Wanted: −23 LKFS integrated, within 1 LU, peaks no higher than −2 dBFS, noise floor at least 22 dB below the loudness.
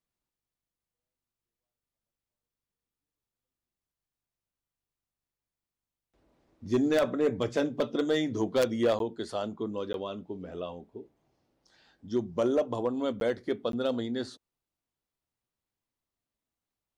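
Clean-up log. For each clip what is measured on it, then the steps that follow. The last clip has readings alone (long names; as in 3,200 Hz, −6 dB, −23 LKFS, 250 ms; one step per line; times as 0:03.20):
share of clipped samples 0.3%; peaks flattened at −19.0 dBFS; number of dropouts 4; longest dropout 12 ms; integrated loudness −30.5 LKFS; sample peak −19.0 dBFS; target loudness −23.0 LKFS
→ clipped peaks rebuilt −19 dBFS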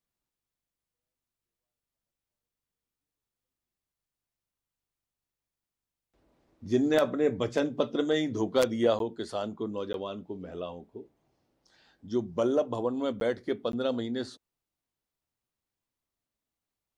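share of clipped samples 0.0%; number of dropouts 4; longest dropout 12 ms
→ repair the gap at 0:08.99/0:09.93/0:13.20/0:13.72, 12 ms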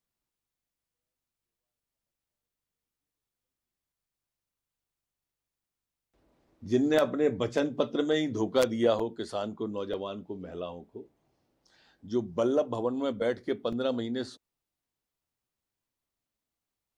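number of dropouts 0; integrated loudness −29.5 LKFS; sample peak −11.5 dBFS; target loudness −23.0 LKFS
→ level +6.5 dB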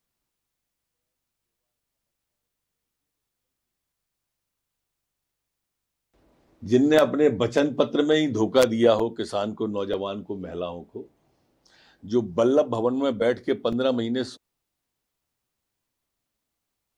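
integrated loudness −23.5 LKFS; sample peak −5.0 dBFS; background noise floor −83 dBFS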